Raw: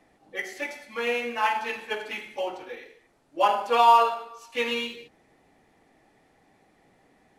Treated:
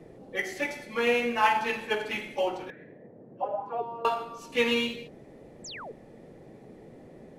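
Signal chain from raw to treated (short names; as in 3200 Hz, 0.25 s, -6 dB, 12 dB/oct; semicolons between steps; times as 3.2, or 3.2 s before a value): low shelf 200 Hz +11.5 dB; 2.7–4.05 auto-wah 320–1800 Hz, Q 7.8, down, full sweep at -13 dBFS; band noise 120–560 Hz -51 dBFS; 5.64–5.92 painted sound fall 370–8200 Hz -42 dBFS; gain +1 dB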